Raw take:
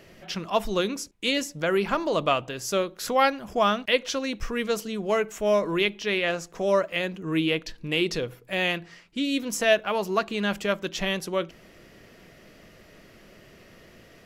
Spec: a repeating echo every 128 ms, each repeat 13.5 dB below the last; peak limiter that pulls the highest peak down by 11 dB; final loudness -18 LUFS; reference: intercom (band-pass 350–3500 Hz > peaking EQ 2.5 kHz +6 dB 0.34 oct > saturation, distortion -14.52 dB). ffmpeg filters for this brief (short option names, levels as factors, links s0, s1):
-af "alimiter=limit=0.119:level=0:latency=1,highpass=350,lowpass=3500,equalizer=f=2500:t=o:w=0.34:g=6,aecho=1:1:128|256:0.211|0.0444,asoftclip=threshold=0.0708,volume=5.01"